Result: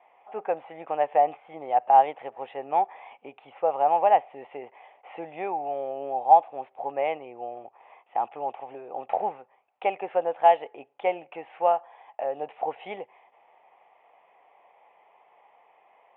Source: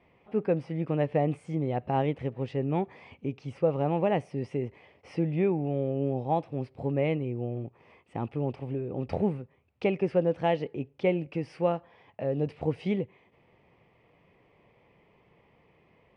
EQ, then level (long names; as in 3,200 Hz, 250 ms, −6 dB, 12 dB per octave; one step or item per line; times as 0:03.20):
high-pass with resonance 770 Hz, resonance Q 4.9
Butterworth low-pass 3,600 Hz 96 dB per octave
high-frequency loss of the air 120 metres
+1.5 dB